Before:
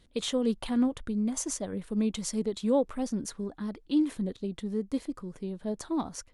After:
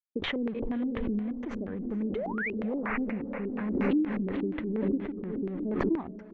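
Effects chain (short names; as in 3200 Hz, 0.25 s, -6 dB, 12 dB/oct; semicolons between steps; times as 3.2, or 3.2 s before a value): painted sound rise, 2.15–2.53, 400–3000 Hz -24 dBFS; compressor 5:1, threshold -30 dBFS, peak gain reduction 9.5 dB; crossover distortion -51 dBFS; high shelf 2500 Hz -11 dB; notch 5200 Hz, Q 29; diffused feedback echo 0.52 s, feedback 43%, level -10.5 dB; LFO low-pass square 4.2 Hz 350–2100 Hz; air absorption 130 m; backwards sustainer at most 26 dB/s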